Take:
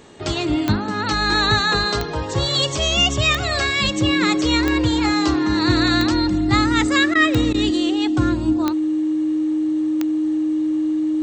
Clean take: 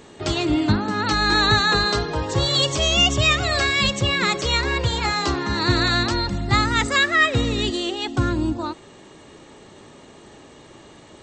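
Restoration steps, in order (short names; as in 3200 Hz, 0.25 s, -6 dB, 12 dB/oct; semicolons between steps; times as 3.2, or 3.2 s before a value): de-click; notch 310 Hz, Q 30; interpolate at 7.14/7.53, 11 ms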